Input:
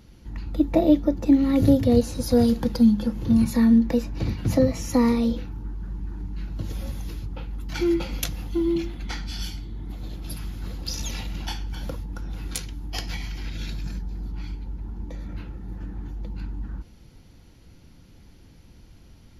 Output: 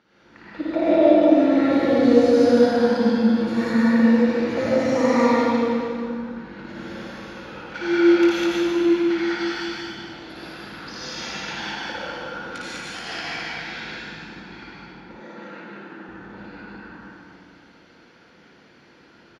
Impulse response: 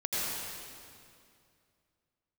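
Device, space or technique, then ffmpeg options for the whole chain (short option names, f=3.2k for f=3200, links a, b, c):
station announcement: -filter_complex "[0:a]highpass=340,lowpass=3.7k,equalizer=f=1.5k:t=o:w=0.57:g=9,aecho=1:1:55.39|201.2:0.794|1[a];[1:a]atrim=start_sample=2205[b];[a][b]afir=irnorm=-1:irlink=0,asettb=1/sr,asplit=3[c][d][e];[c]atrim=end=15.204[f];[d]atrim=start=15.2:end=16.09,asetpts=PTS-STARTPTS,afade=t=in:d=0.004:c=qsin,afade=t=out:st=0.886:d=0.004:c=qsin,highpass=f=160:w=0.5412,highpass=f=160:w=1.3066[g];[e]atrim=start=16.086[h];[f][g]acrossfade=d=0.004:c1=hsin:c2=qsin[i];[i][h]acrossfade=d=0.004:c1=qsin:c2=hsin,volume=-4dB"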